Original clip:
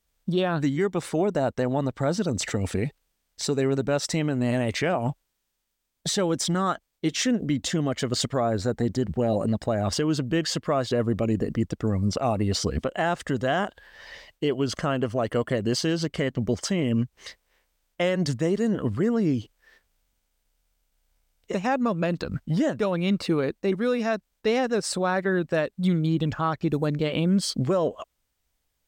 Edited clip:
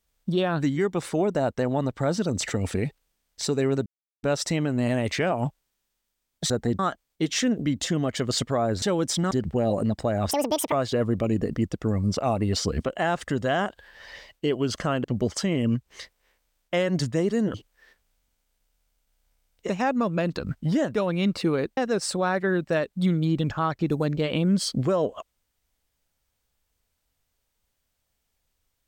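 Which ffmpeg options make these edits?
-filter_complex "[0:a]asplit=11[a][b][c][d][e][f][g][h][i][j][k];[a]atrim=end=3.86,asetpts=PTS-STARTPTS,afade=t=out:st=3.856:d=0.004:c=hsin,apad=pad_dur=0.37[l];[b]atrim=start=3.86:end=6.132,asetpts=PTS-STARTPTS,afade=t=in:d=0.004:c=hsin[m];[c]atrim=start=8.648:end=8.942[n];[d]atrim=start=6.618:end=8.652[o];[e]atrim=start=6.128:end=6.622[p];[f]atrim=start=8.938:end=9.944[q];[g]atrim=start=9.94:end=10.71,asetpts=PTS-STARTPTS,asetrate=82467,aresample=44100[r];[h]atrim=start=10.706:end=15.032[s];[i]atrim=start=16.308:end=18.812[t];[j]atrim=start=19.388:end=23.622[u];[k]atrim=start=24.588[v];[l][m]concat=n=2:v=0:a=1[w];[w][n]acrossfade=d=0.004:c1=hsin:c2=hsin[x];[x][o]acrossfade=d=0.004:c1=hsin:c2=hsin[y];[y][p]acrossfade=d=0.004:c1=hsin:c2=hsin[z];[z][q]acrossfade=d=0.004:c1=hsin:c2=hsin[aa];[aa][r]acrossfade=d=0.004:c1=hsin:c2=hsin[ab];[ab][s]acrossfade=d=0.004:c1=hsin:c2=hsin[ac];[ac][t]acrossfade=d=0.004:c1=hsin:c2=hsin[ad];[ad][u]acrossfade=d=0.004:c1=hsin:c2=hsin[ae];[ae][v]acrossfade=d=0.004:c1=hsin:c2=hsin"

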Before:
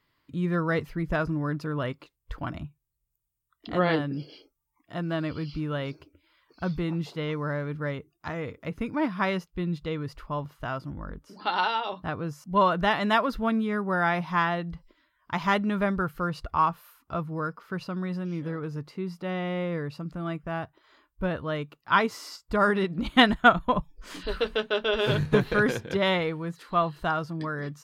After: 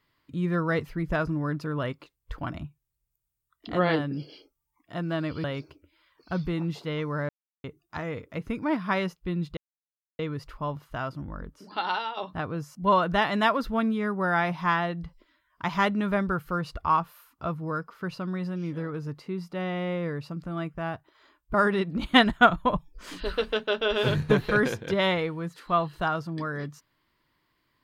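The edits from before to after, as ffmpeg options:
-filter_complex "[0:a]asplit=7[a][b][c][d][e][f][g];[a]atrim=end=5.442[h];[b]atrim=start=5.748:end=7.6,asetpts=PTS-STARTPTS,afade=t=out:st=1.848:d=0.004:c=hsin[i];[c]atrim=start=7.6:end=7.95,asetpts=PTS-STARTPTS,volume=0[j];[d]atrim=start=7.95:end=9.88,asetpts=PTS-STARTPTS,afade=t=in:d=0.004:c=hsin,afade=t=out:st=1.926:d=0.004:c=hsin,apad=pad_dur=0.62[k];[e]atrim=start=9.88:end=11.86,asetpts=PTS-STARTPTS,afade=t=in:d=0.004:c=hsin,afade=t=out:st=1.4:d=0.58:silence=0.473151[l];[f]atrim=start=11.86:end=21.232,asetpts=PTS-STARTPTS,afade=t=in:d=0.004:c=hsin:silence=0.473151[m];[g]atrim=start=22.568[n];[i][j][k][l][m]concat=n=5:v=0:a=1[o];[h][o]acrossfade=d=0.004:c1=hsin:c2=hsin[p];[p][n]acrossfade=d=0.004:c1=hsin:c2=hsin"

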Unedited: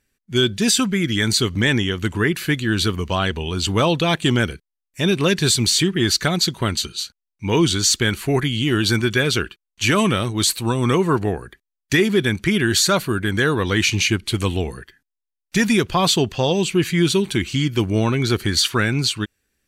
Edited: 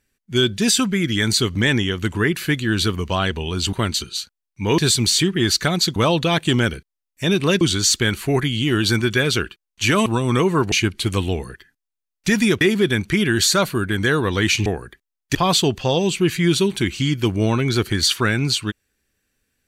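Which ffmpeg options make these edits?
-filter_complex "[0:a]asplit=10[a][b][c][d][e][f][g][h][i][j];[a]atrim=end=3.732[k];[b]atrim=start=6.558:end=7.612[l];[c]atrim=start=5.378:end=6.562[m];[d]atrim=start=3.728:end=5.382[n];[e]atrim=start=7.608:end=10.062[o];[f]atrim=start=10.598:end=11.262[p];[g]atrim=start=13.998:end=15.892[q];[h]atrim=start=11.948:end=14.002[r];[i]atrim=start=11.258:end=11.952[s];[j]atrim=start=15.888[t];[k][l]acrossfade=d=0.004:c1=hsin:c2=hsin[u];[u][m]acrossfade=d=0.004:c1=hsin:c2=hsin[v];[v][n]acrossfade=d=0.004:c1=hsin:c2=hsin[w];[w][o]acrossfade=d=0.004:c1=hsin:c2=hsin[x];[x][p]acrossfade=d=0.004:c1=hsin:c2=hsin[y];[y][q]acrossfade=d=0.004:c1=hsin:c2=hsin[z];[z][r]acrossfade=d=0.004:c1=hsin:c2=hsin[aa];[aa][s]acrossfade=d=0.004:c1=hsin:c2=hsin[ab];[ab][t]acrossfade=d=0.004:c1=hsin:c2=hsin"

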